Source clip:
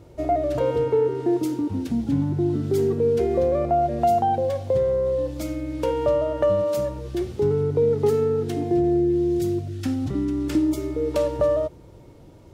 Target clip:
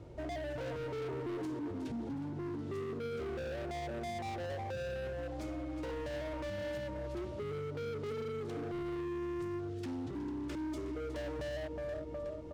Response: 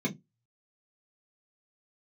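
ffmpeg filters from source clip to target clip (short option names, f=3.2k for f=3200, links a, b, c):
-filter_complex "[0:a]lowpass=8.7k,bass=f=250:g=1,treble=f=4k:g=-5,aecho=1:1:366|732|1098|1464|1830|2196:0.251|0.146|0.0845|0.049|0.0284|0.0165,acrossover=split=290[a][b];[a]acompressor=threshold=-33dB:ratio=6[c];[b]volume=31.5dB,asoftclip=hard,volume=-31.5dB[d];[c][d]amix=inputs=2:normalize=0,alimiter=level_in=6dB:limit=-24dB:level=0:latency=1:release=131,volume=-6dB,volume=-4dB"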